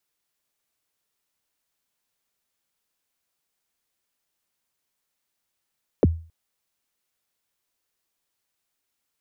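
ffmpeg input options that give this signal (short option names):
-f lavfi -i "aevalsrc='0.316*pow(10,-3*t/0.38)*sin(2*PI*(590*0.028/log(82/590)*(exp(log(82/590)*min(t,0.028)/0.028)-1)+82*max(t-0.028,0)))':d=0.27:s=44100"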